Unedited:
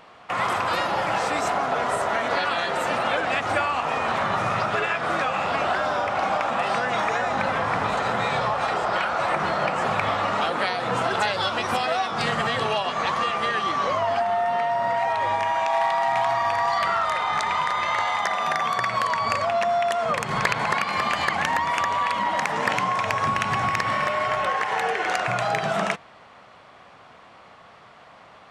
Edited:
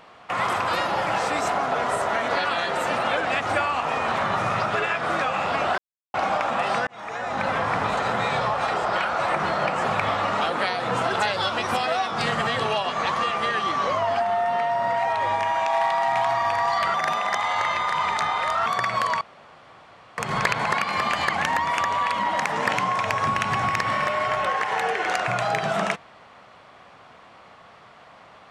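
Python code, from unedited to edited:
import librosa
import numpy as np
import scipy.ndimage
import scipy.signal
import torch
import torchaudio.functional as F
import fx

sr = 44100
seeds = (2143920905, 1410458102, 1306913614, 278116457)

y = fx.edit(x, sr, fx.silence(start_s=5.78, length_s=0.36),
    fx.fade_in_span(start_s=6.87, length_s=0.64),
    fx.reverse_span(start_s=16.94, length_s=1.72),
    fx.room_tone_fill(start_s=19.21, length_s=0.97), tone=tone)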